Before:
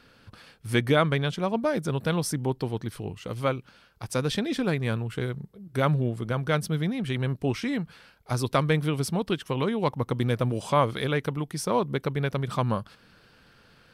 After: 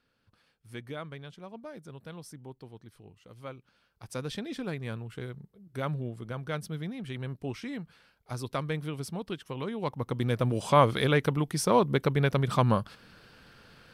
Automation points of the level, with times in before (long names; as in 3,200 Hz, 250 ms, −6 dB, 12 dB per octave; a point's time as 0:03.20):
0:03.28 −18 dB
0:04.15 −9 dB
0:09.59 −9 dB
0:10.84 +2 dB